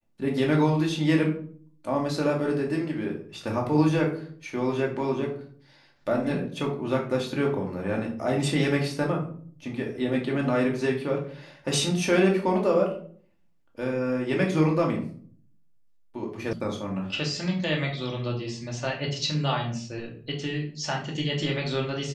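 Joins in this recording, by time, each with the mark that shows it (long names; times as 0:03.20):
0:16.53: cut off before it has died away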